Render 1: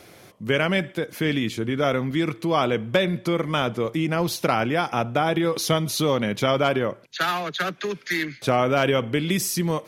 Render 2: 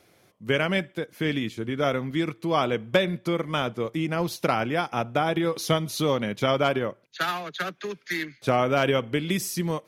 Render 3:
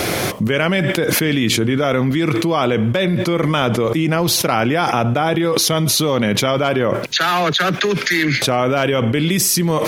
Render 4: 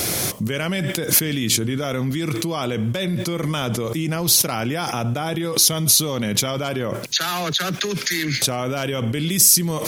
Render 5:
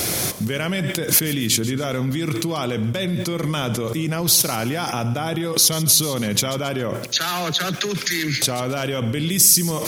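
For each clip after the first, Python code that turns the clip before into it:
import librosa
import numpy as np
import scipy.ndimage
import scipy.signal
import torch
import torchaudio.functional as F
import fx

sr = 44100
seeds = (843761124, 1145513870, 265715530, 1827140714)

y1 = fx.upward_expand(x, sr, threshold_db=-39.0, expansion=1.5)
y2 = fx.env_flatten(y1, sr, amount_pct=100)
y3 = fx.bass_treble(y2, sr, bass_db=5, treble_db=14)
y3 = F.gain(torch.from_numpy(y3), -9.0).numpy()
y4 = fx.echo_feedback(y3, sr, ms=138, feedback_pct=37, wet_db=-16)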